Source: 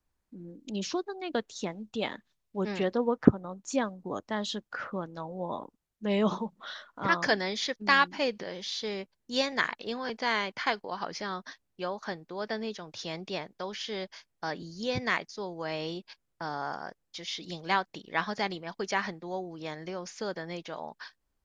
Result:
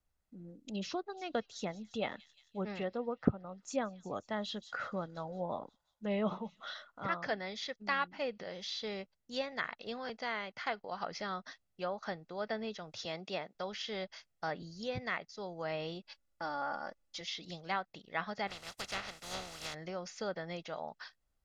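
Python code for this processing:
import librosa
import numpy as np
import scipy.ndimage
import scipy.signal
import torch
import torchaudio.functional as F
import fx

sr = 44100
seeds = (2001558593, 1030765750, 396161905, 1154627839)

y = fx.echo_wet_highpass(x, sr, ms=176, feedback_pct=60, hz=4600.0, wet_db=-12, at=(1.12, 6.71), fade=0.02)
y = fx.highpass(y, sr, hz=180.0, slope=12, at=(13.05, 13.55))
y = fx.comb(y, sr, ms=3.5, depth=0.65, at=(16.05, 17.21))
y = fx.spec_flatten(y, sr, power=0.2, at=(18.47, 19.73), fade=0.02)
y = y + 0.36 * np.pad(y, (int(1.5 * sr / 1000.0), 0))[:len(y)]
y = fx.rider(y, sr, range_db=3, speed_s=0.5)
y = fx.env_lowpass_down(y, sr, base_hz=2900.0, full_db=-26.0)
y = y * librosa.db_to_amplitude(-6.5)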